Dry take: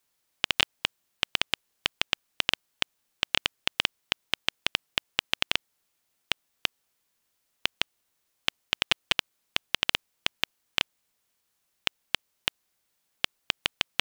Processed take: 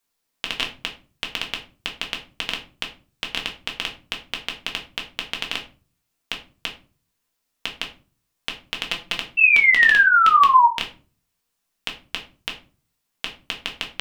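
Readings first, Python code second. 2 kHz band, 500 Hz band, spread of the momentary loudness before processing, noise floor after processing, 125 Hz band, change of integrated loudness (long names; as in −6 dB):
+12.0 dB, +0.5 dB, 6 LU, −77 dBFS, can't be measured, +10.0 dB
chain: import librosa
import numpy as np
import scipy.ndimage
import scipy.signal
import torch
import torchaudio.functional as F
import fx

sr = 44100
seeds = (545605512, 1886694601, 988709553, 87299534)

y = fx.spec_paint(x, sr, seeds[0], shape='fall', start_s=9.37, length_s=1.31, low_hz=920.0, high_hz=2700.0, level_db=-14.0)
y = fx.room_shoebox(y, sr, seeds[1], volume_m3=220.0, walls='furnished', distance_m=1.7)
y = y * librosa.db_to_amplitude(-3.0)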